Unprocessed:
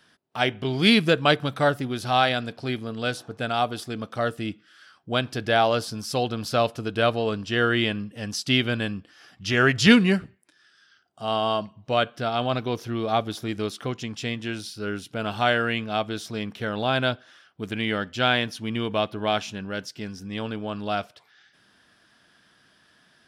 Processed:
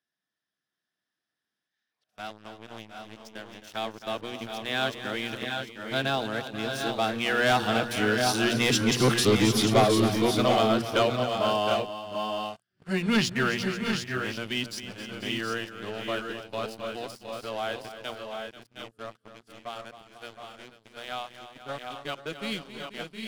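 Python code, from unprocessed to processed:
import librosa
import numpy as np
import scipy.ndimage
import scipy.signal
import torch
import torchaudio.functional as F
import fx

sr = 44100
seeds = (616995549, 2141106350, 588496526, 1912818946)

y = np.flip(x).copy()
y = fx.doppler_pass(y, sr, speed_mps=13, closest_m=7.2, pass_at_s=9.08)
y = scipy.signal.sosfilt(scipy.signal.butter(2, 99.0, 'highpass', fs=sr, output='sos'), y)
y = fx.high_shelf(y, sr, hz=4700.0, db=4.0)
y = fx.hum_notches(y, sr, base_hz=60, count=4)
y = fx.leveller(y, sr, passes=3)
y = fx.echo_multitap(y, sr, ms=(266, 487, 715, 747), db=(-12.0, -14.0, -9.0, -7.0))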